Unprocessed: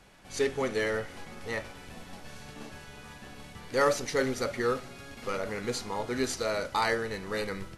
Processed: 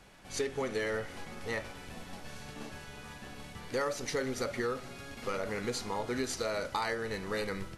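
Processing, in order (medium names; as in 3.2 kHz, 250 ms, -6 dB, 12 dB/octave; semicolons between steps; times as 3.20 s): compression 5:1, threshold -30 dBFS, peak gain reduction 10 dB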